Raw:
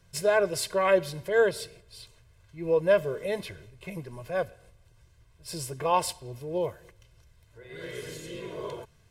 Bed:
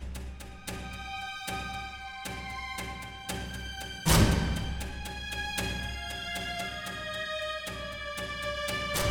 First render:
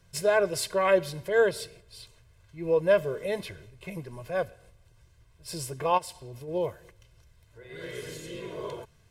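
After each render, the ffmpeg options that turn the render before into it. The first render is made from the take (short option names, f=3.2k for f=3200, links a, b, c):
-filter_complex "[0:a]asplit=3[a][b][c];[a]afade=t=out:st=5.97:d=0.02[d];[b]acompressor=threshold=-38dB:ratio=4:attack=3.2:release=140:knee=1:detection=peak,afade=t=in:st=5.97:d=0.02,afade=t=out:st=6.47:d=0.02[e];[c]afade=t=in:st=6.47:d=0.02[f];[d][e][f]amix=inputs=3:normalize=0"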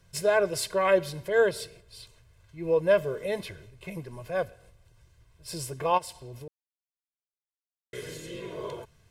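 -filter_complex "[0:a]asplit=3[a][b][c];[a]atrim=end=6.48,asetpts=PTS-STARTPTS,afade=t=out:st=6.476:d=0.004:c=hsin[d];[b]atrim=start=6.48:end=7.93,asetpts=PTS-STARTPTS,volume=0[e];[c]atrim=start=7.93,asetpts=PTS-STARTPTS,afade=t=in:d=0.004:c=hsin[f];[d][e][f]concat=n=3:v=0:a=1"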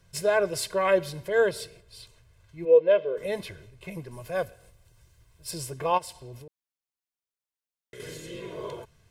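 -filter_complex "[0:a]asplit=3[a][b][c];[a]afade=t=out:st=2.64:d=0.02[d];[b]highpass=360,equalizer=f=490:t=q:w=4:g=9,equalizer=f=830:t=q:w=4:g=-7,equalizer=f=1.2k:t=q:w=4:g=-6,equalizer=f=1.8k:t=q:w=4:g=-6,equalizer=f=3.3k:t=q:w=4:g=3,lowpass=f=3.4k:w=0.5412,lowpass=f=3.4k:w=1.3066,afade=t=in:st=2.64:d=0.02,afade=t=out:st=3.16:d=0.02[e];[c]afade=t=in:st=3.16:d=0.02[f];[d][e][f]amix=inputs=3:normalize=0,asettb=1/sr,asplit=3[g][h][i];[g]atrim=end=4.114[j];[h]atrim=start=4.11:end=5.51,asetpts=PTS-STARTPTS,afade=t=in:d=0.004:c=qsin,afade=t=out:st=1.396:d=0.004:c=qsin,highshelf=f=6.3k:g=8.5[k];[i]atrim=start=5.506[l];[j][k]acrossfade=d=0.004:c1=hsin:c2=qsin[m];[m][l]acrossfade=d=0.004:c1=qsin:c2=hsin,asettb=1/sr,asplit=3[n][o][p];[n]atrim=end=6.374[q];[o]atrim=start=6.37:end=8,asetpts=PTS-STARTPTS,afade=t=in:d=0.004:c=qsin,afade=t=out:st=1.626:d=0.004:c=qsin,acompressor=threshold=-42dB:ratio=4:attack=3.2:release=140:knee=1:detection=peak[r];[p]atrim=start=7.996[s];[q][r]acrossfade=d=0.004:c1=hsin:c2=qsin[t];[t][s]acrossfade=d=0.004:c1=qsin:c2=hsin"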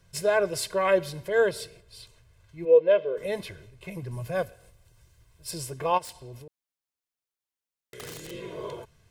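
-filter_complex "[0:a]asettb=1/sr,asplit=3[a][b][c];[a]atrim=end=4.024[d];[b]atrim=start=4.02:end=4.42,asetpts=PTS-STARTPTS,afade=t=in:d=0.004:c=qsin,afade=t=out:st=0.396:d=0.004:c=qsin,equalizer=f=130:w=1.5:g=10.5[e];[c]atrim=start=4.416[f];[d][e]acrossfade=d=0.004:c1=hsin:c2=qsin[g];[g][f]acrossfade=d=0.004:c1=qsin:c2=hsin,asettb=1/sr,asplit=3[h][i][j];[h]atrim=end=6.054[k];[i]atrim=start=6.05:end=8.31,asetpts=PTS-STARTPTS,afade=t=in:d=0.004:c=qsin,afade=t=out:st=2.256:d=0.004:c=qsin,aeval=exprs='(mod(44.7*val(0)+1,2)-1)/44.7':c=same[l];[j]atrim=start=8.306[m];[k][l]acrossfade=d=0.004:c1=hsin:c2=qsin[n];[n][m]acrossfade=d=0.004:c1=qsin:c2=hsin"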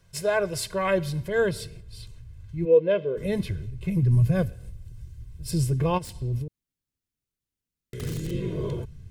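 -af "asubboost=boost=10.5:cutoff=230"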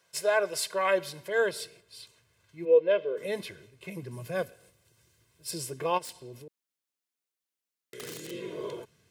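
-af "highpass=470"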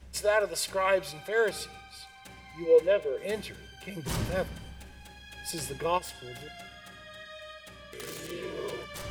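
-filter_complex "[1:a]volume=-11dB[a];[0:a][a]amix=inputs=2:normalize=0"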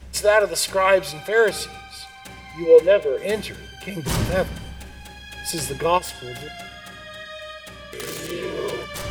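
-af "volume=9dB"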